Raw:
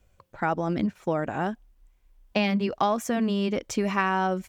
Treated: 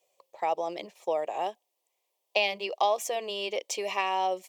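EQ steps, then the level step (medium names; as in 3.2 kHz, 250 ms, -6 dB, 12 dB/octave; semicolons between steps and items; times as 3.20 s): Bessel high-pass 460 Hz, order 4; static phaser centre 610 Hz, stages 4; dynamic bell 2.7 kHz, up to +6 dB, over -50 dBFS, Q 1.7; +2.0 dB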